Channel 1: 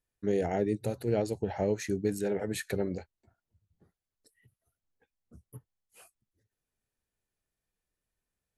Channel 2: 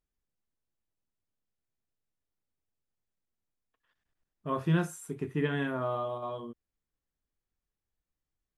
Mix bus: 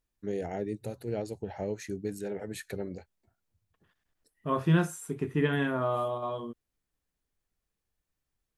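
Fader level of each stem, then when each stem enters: -5.0, +3.0 dB; 0.00, 0.00 s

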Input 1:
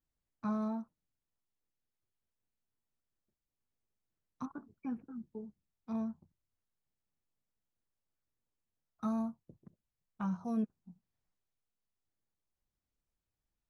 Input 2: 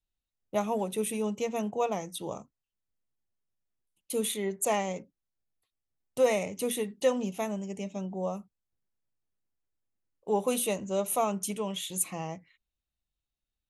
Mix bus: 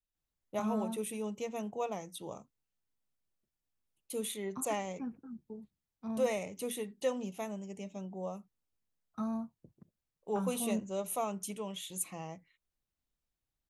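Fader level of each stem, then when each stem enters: -1.5, -7.0 dB; 0.15, 0.00 s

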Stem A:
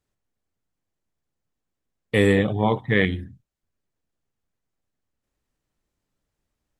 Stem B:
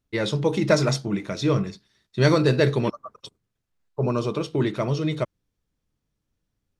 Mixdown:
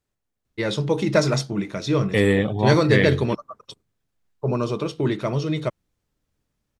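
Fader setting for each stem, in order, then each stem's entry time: -0.5, +0.5 dB; 0.00, 0.45 s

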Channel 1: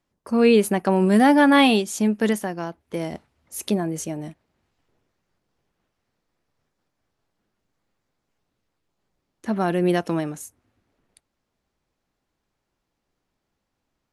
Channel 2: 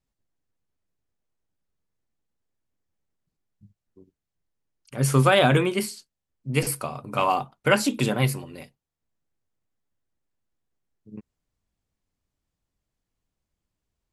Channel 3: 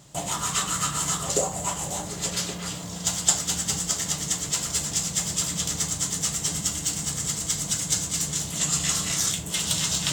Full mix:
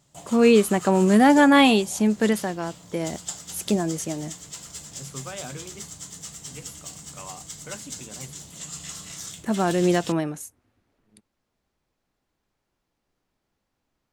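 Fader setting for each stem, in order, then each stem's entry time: 0.0, -19.5, -12.5 dB; 0.00, 0.00, 0.00 s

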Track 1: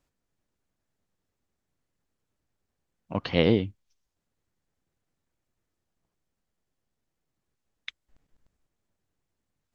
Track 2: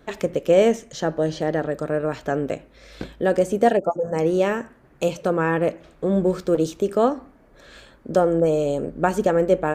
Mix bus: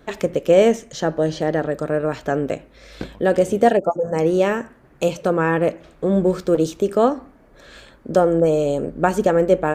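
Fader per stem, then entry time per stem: -18.0, +2.5 dB; 0.00, 0.00 s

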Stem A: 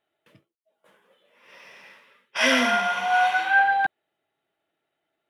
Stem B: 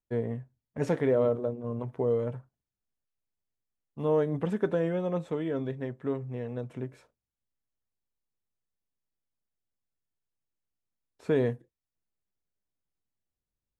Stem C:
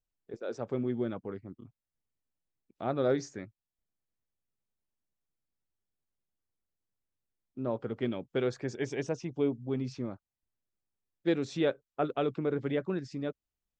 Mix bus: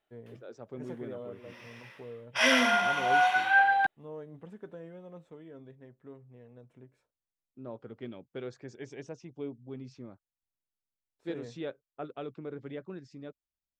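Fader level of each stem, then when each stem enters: -3.5, -17.5, -9.5 dB; 0.00, 0.00, 0.00 s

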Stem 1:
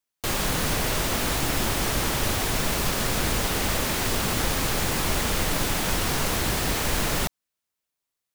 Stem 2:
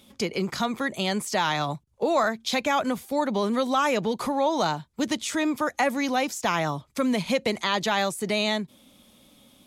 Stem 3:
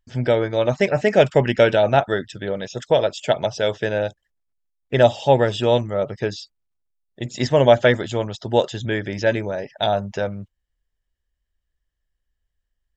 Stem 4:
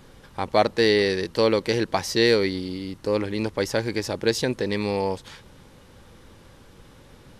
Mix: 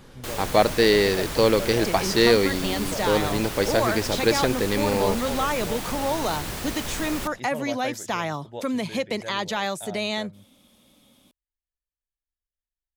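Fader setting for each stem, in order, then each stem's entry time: -7.0, -2.5, -19.0, +1.0 dB; 0.00, 1.65, 0.00, 0.00 s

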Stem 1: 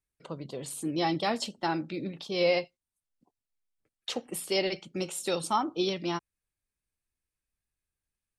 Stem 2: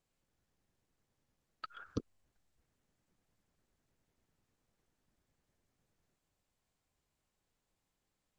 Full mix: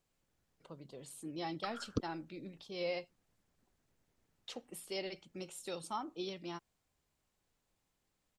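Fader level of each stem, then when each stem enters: -12.5, +2.0 dB; 0.40, 0.00 s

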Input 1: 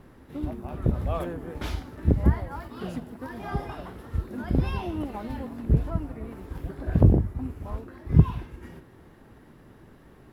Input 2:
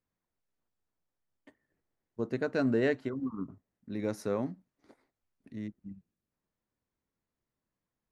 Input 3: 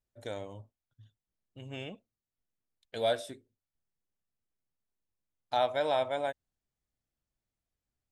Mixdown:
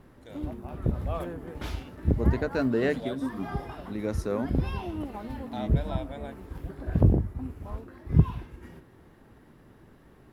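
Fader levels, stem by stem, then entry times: -3.0, +2.0, -9.5 dB; 0.00, 0.00, 0.00 s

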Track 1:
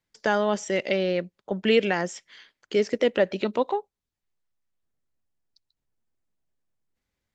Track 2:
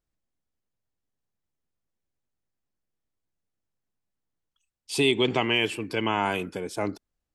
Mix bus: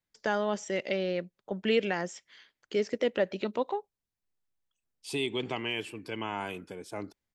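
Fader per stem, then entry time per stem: -6.0, -9.5 dB; 0.00, 0.15 s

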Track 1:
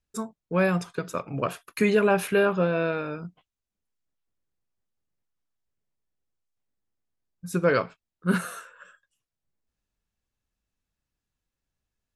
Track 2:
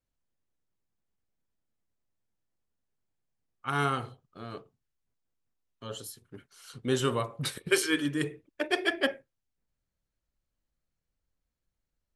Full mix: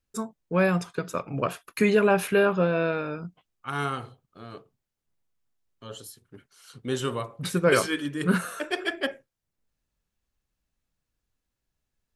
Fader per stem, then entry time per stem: +0.5, -1.0 dB; 0.00, 0.00 s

